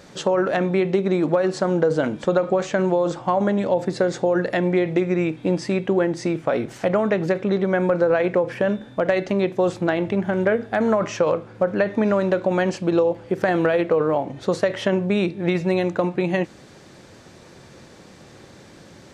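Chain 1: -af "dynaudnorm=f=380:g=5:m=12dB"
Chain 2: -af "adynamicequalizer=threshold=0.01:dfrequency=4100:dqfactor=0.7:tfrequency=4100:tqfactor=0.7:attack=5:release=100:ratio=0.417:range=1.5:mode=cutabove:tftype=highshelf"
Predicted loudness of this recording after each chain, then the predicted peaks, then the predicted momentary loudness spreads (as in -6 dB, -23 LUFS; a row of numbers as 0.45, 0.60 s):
-14.5, -21.5 LUFS; -1.5, -8.5 dBFS; 4, 4 LU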